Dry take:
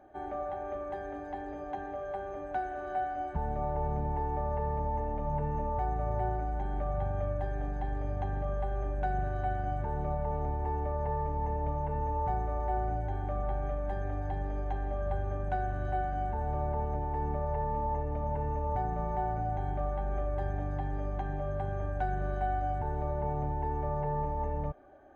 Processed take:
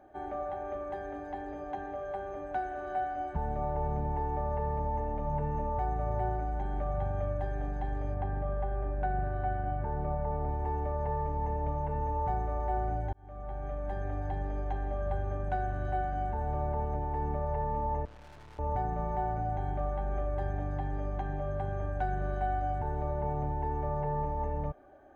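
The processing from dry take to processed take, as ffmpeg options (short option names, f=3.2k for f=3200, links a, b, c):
-filter_complex "[0:a]asettb=1/sr,asplit=3[a][b][c];[a]atrim=end=8.144[d];[b]atrim=start=8.14:end=10.49,asetpts=PTS-STARTPTS,afade=t=in:d=0.004:c=qsin,afade=t=out:st=2.346:d=0.004:c=qsin,lowpass=2.4k[e];[c]atrim=start=10.486[f];[d][e]acrossfade=d=0.004:c1=hsin:c2=qsin[g];[g][f]acrossfade=d=0.004:c1=qsin:c2=hsin,asettb=1/sr,asplit=3[h][i][j];[h]atrim=end=18.054[k];[i]atrim=start=18.05:end=18.59,asetpts=PTS-STARTPTS,afade=t=in:d=0.004:c=qsin,afade=t=out:st=0.536:d=0.004:c=qsin,aeval=exprs='(tanh(355*val(0)+0.65)-tanh(0.65))/355':c=same[l];[j]atrim=start=18.586[m];[k][l]acrossfade=d=0.004:c1=hsin:c2=qsin[n];[n][m]acrossfade=d=0.004:c1=qsin:c2=hsin,asplit=2[o][p];[o]atrim=end=13.13,asetpts=PTS-STARTPTS,afade=t=out:st=13.126:d=0.004:c=hsin[q];[p]atrim=start=13.13,asetpts=PTS-STARTPTS,afade=t=in:d=1.18:c=qsin[r];[q][r]concat=n=2:v=0:a=1"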